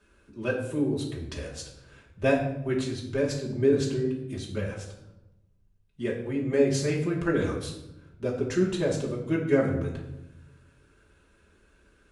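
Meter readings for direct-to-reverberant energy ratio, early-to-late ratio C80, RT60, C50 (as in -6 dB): -4.5 dB, 9.0 dB, 0.90 s, 6.5 dB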